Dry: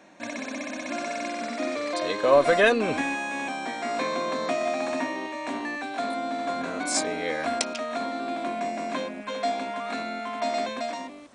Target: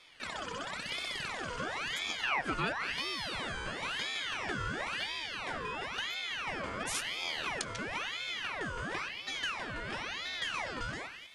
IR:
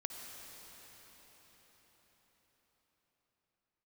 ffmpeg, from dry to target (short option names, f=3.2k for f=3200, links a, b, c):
-filter_complex "[0:a]acompressor=threshold=-29dB:ratio=2.5,asplit=2[a][b];[1:a]atrim=start_sample=2205[c];[b][c]afir=irnorm=-1:irlink=0,volume=-11.5dB[d];[a][d]amix=inputs=2:normalize=0,aeval=exprs='val(0)*sin(2*PI*1800*n/s+1800*0.6/0.97*sin(2*PI*0.97*n/s))':c=same,volume=-4dB"